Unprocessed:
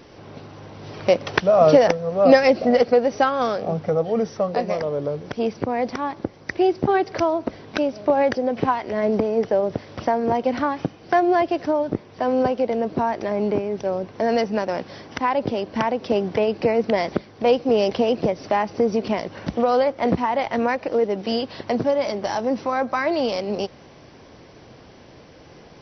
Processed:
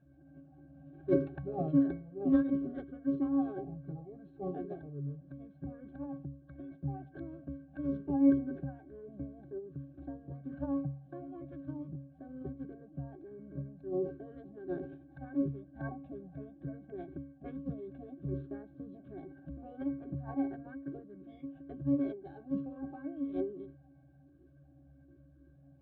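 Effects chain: pitch-class resonator C#, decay 0.46 s; formant shift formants -6 st

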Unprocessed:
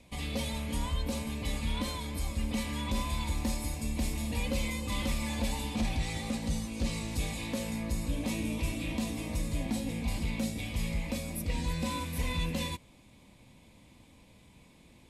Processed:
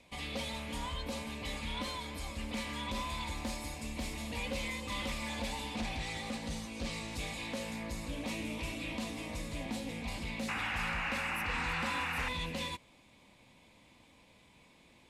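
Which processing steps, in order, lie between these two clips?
painted sound noise, 10.48–12.29 s, 720–2900 Hz -36 dBFS; overdrive pedal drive 10 dB, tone 4.2 kHz, clips at -22 dBFS; loudspeaker Doppler distortion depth 0.14 ms; trim -4 dB

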